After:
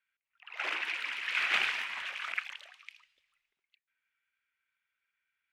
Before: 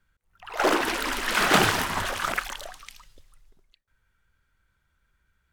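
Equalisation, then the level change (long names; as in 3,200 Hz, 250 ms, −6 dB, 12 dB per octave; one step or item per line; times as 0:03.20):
resonant band-pass 2,400 Hz, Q 3.6
0.0 dB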